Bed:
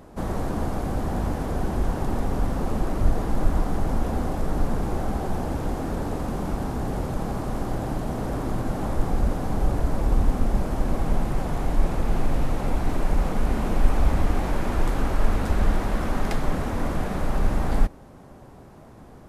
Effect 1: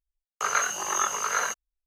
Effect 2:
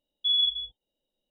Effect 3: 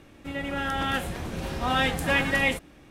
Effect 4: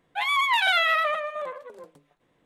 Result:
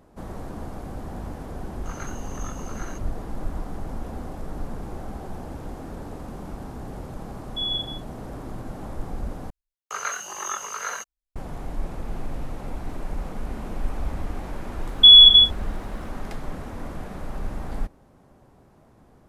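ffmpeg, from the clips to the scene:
-filter_complex "[1:a]asplit=2[a][b];[2:a]asplit=2[c][d];[0:a]volume=-8.5dB[e];[d]alimiter=level_in=25dB:limit=-1dB:release=50:level=0:latency=1[f];[e]asplit=2[g][h];[g]atrim=end=9.504[i];[b]atrim=end=1.86,asetpts=PTS-STARTPTS,volume=-4.5dB[j];[h]atrim=start=11.356[k];[a]atrim=end=1.86,asetpts=PTS-STARTPTS,volume=-15.5dB,afade=t=in:d=0.004:c=hsin,afade=t=out:st=1.856:d=0.004:c=hsin,adelay=1450[l];[c]atrim=end=1.3,asetpts=PTS-STARTPTS,volume=-4dB,afade=t=in:d=0.004:c=hsin,afade=t=out:st=1.296:d=0.004:c=hsin,adelay=7320[m];[f]atrim=end=1.3,asetpts=PTS-STARTPTS,volume=-3dB,afade=t=in:d=0.004:c=hsin,afade=t=out:st=1.296:d=0.004:c=hsin,adelay=14790[n];[i][j]acrossfade=d=0.004:c1=hsin:c2=hsin[o];[o][k]acrossfade=d=0.004:c1=hsin:c2=hsin[p];[p][l][m][n]amix=inputs=4:normalize=0"

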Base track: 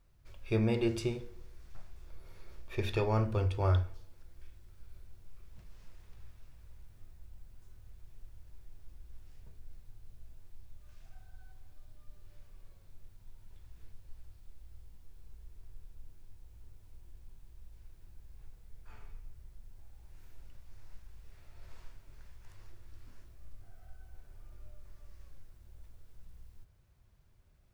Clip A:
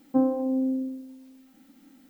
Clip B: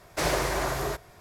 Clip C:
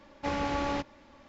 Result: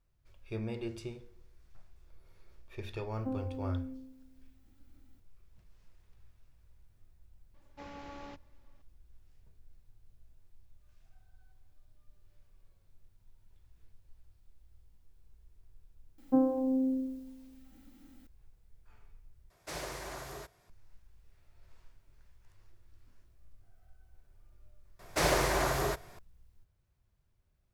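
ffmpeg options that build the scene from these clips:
-filter_complex "[1:a]asplit=2[a][b];[2:a]asplit=2[c][d];[0:a]volume=-8.5dB[e];[c]equalizer=f=6.9k:t=o:w=2.7:g=3.5[f];[e]asplit=2[g][h];[g]atrim=end=19.504[i];[f]atrim=end=1.2,asetpts=PTS-STARTPTS,volume=-15.5dB[j];[h]atrim=start=20.696[k];[a]atrim=end=2.09,asetpts=PTS-STARTPTS,volume=-15dB,afade=t=in:d=0.004:c=hsin,afade=t=out:st=2.086:d=0.004:c=hsin,adelay=3110[l];[3:a]atrim=end=1.28,asetpts=PTS-STARTPTS,volume=-16.5dB,afade=t=in:d=0.004:c=hsin,afade=t=out:st=1.276:d=0.004:c=hsin,adelay=332514S[m];[b]atrim=end=2.09,asetpts=PTS-STARTPTS,volume=-4dB,afade=t=in:d=0.004:c=hsin,afade=t=out:st=2.086:d=0.004:c=hsin,adelay=16180[n];[d]atrim=end=1.2,asetpts=PTS-STARTPTS,volume=-1.5dB,afade=t=in:d=0.004:c=hsin,afade=t=out:st=1.196:d=0.004:c=hsin,adelay=24990[o];[i][j]acrossfade=d=0.004:c1=hsin:c2=hsin[p];[p][k]acrossfade=d=0.004:c1=hsin:c2=hsin[q];[q][l][m][n][o]amix=inputs=5:normalize=0"

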